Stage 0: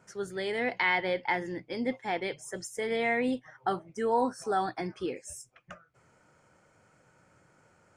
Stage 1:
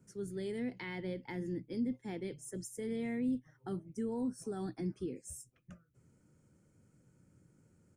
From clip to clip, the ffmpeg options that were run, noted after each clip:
-filter_complex "[0:a]firequalizer=gain_entry='entry(250,0);entry(690,-21);entry(10000,-3)':delay=0.05:min_phase=1,acrossover=split=210[s0][s1];[s1]alimiter=level_in=3.76:limit=0.0631:level=0:latency=1:release=156,volume=0.266[s2];[s0][s2]amix=inputs=2:normalize=0,volume=1.26"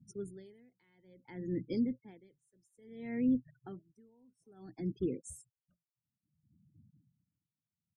-af "afftfilt=real='re*gte(hypot(re,im),0.00224)':imag='im*gte(hypot(re,im),0.00224)':win_size=1024:overlap=0.75,aeval=exprs='val(0)*pow(10,-35*(0.5-0.5*cos(2*PI*0.59*n/s))/20)':c=same,volume=1.88"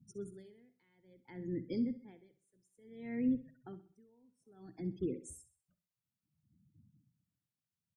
-af "aecho=1:1:64|128|192|256:0.188|0.0753|0.0301|0.0121,volume=0.75"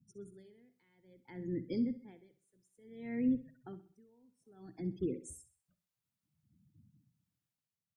-af "dynaudnorm=f=110:g=9:m=2.24,volume=0.501"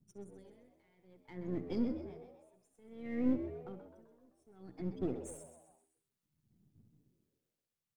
-filter_complex "[0:a]aeval=exprs='if(lt(val(0),0),0.447*val(0),val(0))':c=same,asplit=6[s0][s1][s2][s3][s4][s5];[s1]adelay=129,afreqshift=80,volume=0.282[s6];[s2]adelay=258,afreqshift=160,volume=0.141[s7];[s3]adelay=387,afreqshift=240,volume=0.0708[s8];[s4]adelay=516,afreqshift=320,volume=0.0351[s9];[s5]adelay=645,afreqshift=400,volume=0.0176[s10];[s0][s6][s7][s8][s9][s10]amix=inputs=6:normalize=0,volume=1.19"

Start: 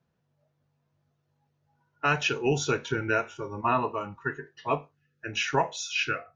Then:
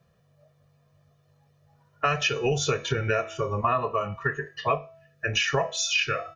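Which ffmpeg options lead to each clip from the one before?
-af "aecho=1:1:1.7:0.73,bandreject=f=328.2:t=h:w=4,bandreject=f=656.4:t=h:w=4,bandreject=f=984.6:t=h:w=4,bandreject=f=1312.8:t=h:w=4,bandreject=f=1641:t=h:w=4,bandreject=f=1969.2:t=h:w=4,bandreject=f=2297.4:t=h:w=4,bandreject=f=2625.6:t=h:w=4,bandreject=f=2953.8:t=h:w=4,bandreject=f=3282:t=h:w=4,bandreject=f=3610.2:t=h:w=4,bandreject=f=3938.4:t=h:w=4,bandreject=f=4266.6:t=h:w=4,bandreject=f=4594.8:t=h:w=4,bandreject=f=4923:t=h:w=4,bandreject=f=5251.2:t=h:w=4,bandreject=f=5579.4:t=h:w=4,bandreject=f=5907.6:t=h:w=4,bandreject=f=6235.8:t=h:w=4,bandreject=f=6564:t=h:w=4,bandreject=f=6892.2:t=h:w=4,bandreject=f=7220.4:t=h:w=4,bandreject=f=7548.6:t=h:w=4,bandreject=f=7876.8:t=h:w=4,bandreject=f=8205:t=h:w=4,bandreject=f=8533.2:t=h:w=4,bandreject=f=8861.4:t=h:w=4,bandreject=f=9189.6:t=h:w=4,bandreject=f=9517.8:t=h:w=4,bandreject=f=9846:t=h:w=4,bandreject=f=10174.2:t=h:w=4,bandreject=f=10502.4:t=h:w=4,bandreject=f=10830.6:t=h:w=4,bandreject=f=11158.8:t=h:w=4,bandreject=f=11487:t=h:w=4,acompressor=threshold=0.0251:ratio=4,volume=2.82"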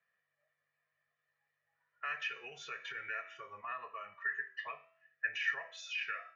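-af "alimiter=limit=0.133:level=0:latency=1:release=83,bandpass=f=1900:t=q:w=4.7:csg=0,flanger=delay=10:depth=2.8:regen=88:speed=0.55:shape=sinusoidal,volume=1.58"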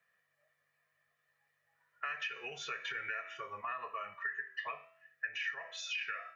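-af "acompressor=threshold=0.00891:ratio=6,volume=1.88"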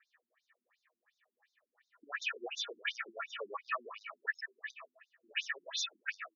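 -filter_complex "[0:a]acrossover=split=1000[s0][s1];[s1]asoftclip=type=tanh:threshold=0.0188[s2];[s0][s2]amix=inputs=2:normalize=0,afftfilt=real='re*between(b*sr/1024,250*pow(5100/250,0.5+0.5*sin(2*PI*2.8*pts/sr))/1.41,250*pow(5100/250,0.5+0.5*sin(2*PI*2.8*pts/sr))*1.41)':imag='im*between(b*sr/1024,250*pow(5100/250,0.5+0.5*sin(2*PI*2.8*pts/sr))/1.41,250*pow(5100/250,0.5+0.5*sin(2*PI*2.8*pts/sr))*1.41)':win_size=1024:overlap=0.75,volume=3.35"

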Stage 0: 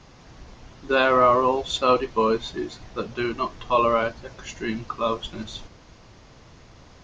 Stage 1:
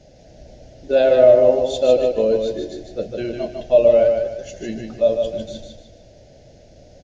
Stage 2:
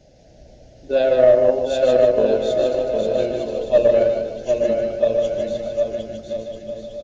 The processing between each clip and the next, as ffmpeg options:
-filter_complex "[0:a]firequalizer=gain_entry='entry(410,0);entry(600,13);entry(1100,-30);entry(1500,-9);entry(5200,-1)':delay=0.05:min_phase=1,asplit=2[s0][s1];[s1]aecho=0:1:151|302|453|604:0.562|0.197|0.0689|0.0241[s2];[s0][s2]amix=inputs=2:normalize=0"
-af "aresample=22050,aresample=44100,aecho=1:1:760|1292|1664|1925|2108:0.631|0.398|0.251|0.158|0.1,aeval=exprs='1*(cos(1*acos(clip(val(0)/1,-1,1)))-cos(1*PI/2))+0.0316*(cos(2*acos(clip(val(0)/1,-1,1)))-cos(2*PI/2))+0.0562*(cos(3*acos(clip(val(0)/1,-1,1)))-cos(3*PI/2))+0.00708*(cos(7*acos(clip(val(0)/1,-1,1)))-cos(7*PI/2))':c=same,volume=0.891"

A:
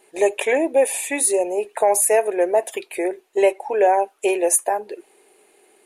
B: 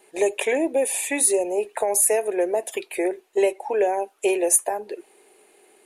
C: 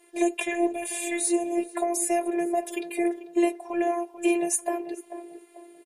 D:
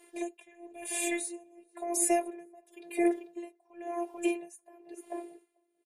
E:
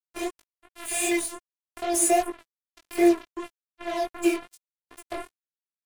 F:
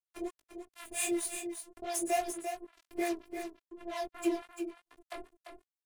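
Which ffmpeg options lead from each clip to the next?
-filter_complex "[0:a]acrossover=split=410|3000[s0][s1][s2];[s1]acompressor=threshold=0.0631:ratio=6[s3];[s0][s3][s2]amix=inputs=3:normalize=0"
-filter_complex "[0:a]asplit=2[s0][s1];[s1]adelay=441,lowpass=f=1200:p=1,volume=0.282,asplit=2[s2][s3];[s3]adelay=441,lowpass=f=1200:p=1,volume=0.43,asplit=2[s4][s5];[s5]adelay=441,lowpass=f=1200:p=1,volume=0.43,asplit=2[s6][s7];[s7]adelay=441,lowpass=f=1200:p=1,volume=0.43[s8];[s0][s2][s4][s6][s8]amix=inputs=5:normalize=0,afftfilt=real='hypot(re,im)*cos(PI*b)':imag='0':win_size=512:overlap=0.75,acrossover=split=9000[s9][s10];[s10]acompressor=threshold=0.0141:ratio=4:attack=1:release=60[s11];[s9][s11]amix=inputs=2:normalize=0"
-af "aeval=exprs='val(0)*pow(10,-29*(0.5-0.5*cos(2*PI*0.97*n/s))/20)':c=same"
-af "acrusher=bits=5:mix=0:aa=0.5,flanger=delay=17:depth=5:speed=2.6,volume=2.82"
-filter_complex "[0:a]acrossover=split=600[s0][s1];[s0]aeval=exprs='val(0)*(1-1/2+1/2*cos(2*PI*4.4*n/s))':c=same[s2];[s1]aeval=exprs='val(0)*(1-1/2-1/2*cos(2*PI*4.4*n/s))':c=same[s3];[s2][s3]amix=inputs=2:normalize=0,aecho=1:1:344:0.422,volume=0.596"

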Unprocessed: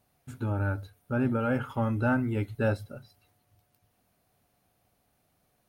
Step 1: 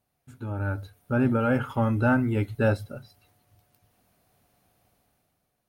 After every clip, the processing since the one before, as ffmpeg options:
-af "dynaudnorm=f=150:g=9:m=3.55,volume=0.473"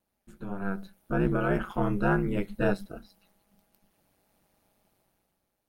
-af "aeval=exprs='val(0)*sin(2*PI*96*n/s)':c=same"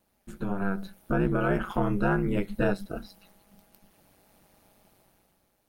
-af "acompressor=threshold=0.0158:ratio=2,volume=2.66"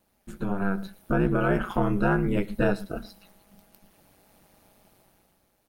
-af "aecho=1:1:113:0.0891,volume=1.26"

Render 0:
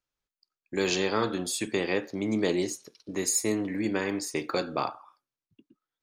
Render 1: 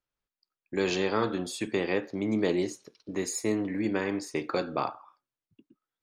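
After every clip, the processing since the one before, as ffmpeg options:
-af "lowpass=f=3000:p=1"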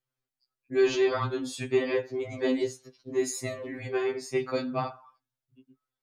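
-af "equalizer=f=120:w=0.51:g=6,afftfilt=real='re*2.45*eq(mod(b,6),0)':imag='im*2.45*eq(mod(b,6),0)':win_size=2048:overlap=0.75,volume=1.19"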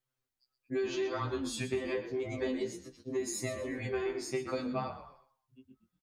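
-filter_complex "[0:a]acompressor=threshold=0.0282:ratio=6,asplit=4[s0][s1][s2][s3];[s1]adelay=121,afreqshift=-40,volume=0.251[s4];[s2]adelay=242,afreqshift=-80,volume=0.0851[s5];[s3]adelay=363,afreqshift=-120,volume=0.0292[s6];[s0][s4][s5][s6]amix=inputs=4:normalize=0"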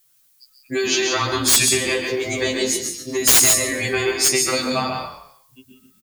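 -af "crystalizer=i=9.5:c=0,aecho=1:1:142.9|177.8:0.501|0.316,aeval=exprs='(mod(5.31*val(0)+1,2)-1)/5.31':c=same,volume=2.66"

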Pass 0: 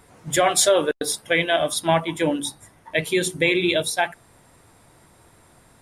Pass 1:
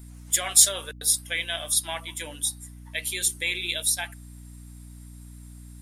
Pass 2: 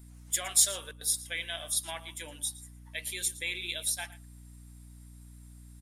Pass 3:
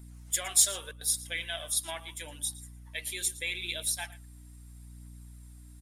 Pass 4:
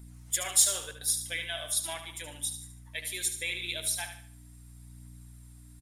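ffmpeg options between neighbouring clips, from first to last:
-af "aderivative,aeval=exprs='val(0)+0.00501*(sin(2*PI*60*n/s)+sin(2*PI*2*60*n/s)/2+sin(2*PI*3*60*n/s)/3+sin(2*PI*4*60*n/s)/4+sin(2*PI*5*60*n/s)/5)':c=same,volume=1.5"
-af "aecho=1:1:115:0.126,volume=0.447"
-af "aphaser=in_gain=1:out_gain=1:delay=3.2:decay=0.29:speed=0.79:type=triangular"
-af "aecho=1:1:74|148|222|296:0.355|0.131|0.0486|0.018"

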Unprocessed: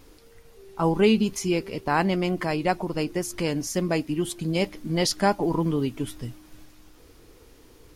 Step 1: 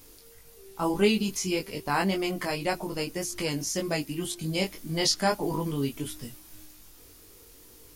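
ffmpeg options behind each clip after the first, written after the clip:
-filter_complex "[0:a]flanger=delay=19.5:depth=2.1:speed=1.8,acrossover=split=6700[s0][s1];[s1]acompressor=threshold=0.00251:ratio=4:attack=1:release=60[s2];[s0][s2]amix=inputs=2:normalize=0,aemphasis=mode=production:type=75kf,volume=0.841"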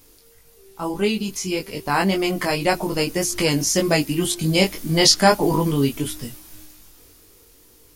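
-af "dynaudnorm=f=210:g=17:m=4.47"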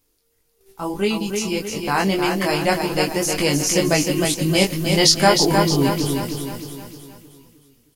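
-filter_complex "[0:a]agate=range=0.178:threshold=0.00447:ratio=16:detection=peak,asplit=2[s0][s1];[s1]aecho=0:1:310|620|930|1240|1550|1860:0.562|0.27|0.13|0.0622|0.0299|0.0143[s2];[s0][s2]amix=inputs=2:normalize=0"

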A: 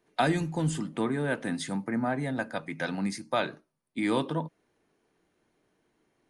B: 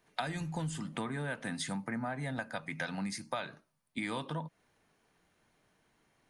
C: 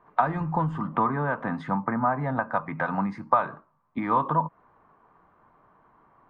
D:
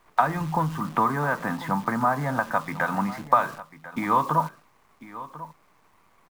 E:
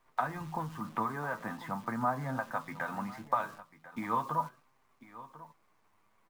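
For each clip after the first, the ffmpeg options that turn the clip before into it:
-af "equalizer=f=350:w=1.2:g=-10,acompressor=threshold=0.0126:ratio=6,volume=1.58"
-af "lowpass=f=1100:t=q:w=4.9,volume=2.66"
-af "highshelf=f=2100:g=10,acrusher=bits=8:dc=4:mix=0:aa=0.000001,aecho=1:1:1044:0.158"
-af "flanger=delay=7.5:depth=2.2:regen=46:speed=0.42:shape=triangular,volume=0.473"

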